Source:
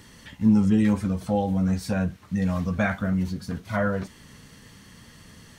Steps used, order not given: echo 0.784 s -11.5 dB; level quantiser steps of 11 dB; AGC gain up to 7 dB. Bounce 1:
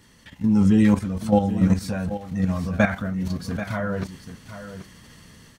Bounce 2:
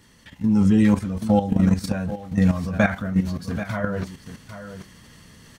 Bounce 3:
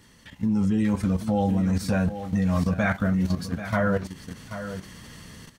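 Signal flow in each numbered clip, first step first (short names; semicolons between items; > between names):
level quantiser > AGC > echo; echo > level quantiser > AGC; AGC > echo > level quantiser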